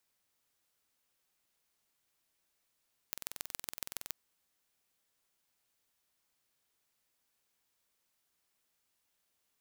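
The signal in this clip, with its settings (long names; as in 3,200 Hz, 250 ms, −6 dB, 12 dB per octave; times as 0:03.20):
impulse train 21.5 per second, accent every 3, −9 dBFS 1.02 s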